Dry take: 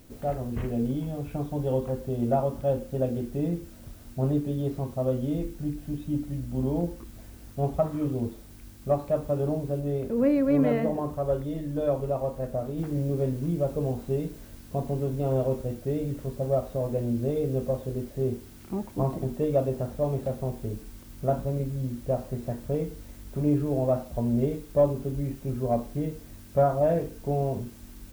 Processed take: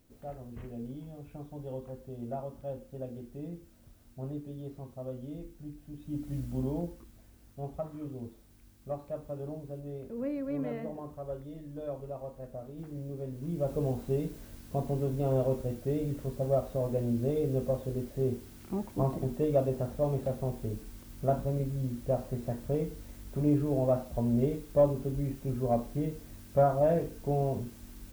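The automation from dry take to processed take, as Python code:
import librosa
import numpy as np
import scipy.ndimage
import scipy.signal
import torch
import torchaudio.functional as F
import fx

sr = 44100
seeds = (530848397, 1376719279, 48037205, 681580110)

y = fx.gain(x, sr, db=fx.line((5.92, -13.0), (6.39, -2.0), (7.23, -12.0), (13.27, -12.0), (13.74, -2.5)))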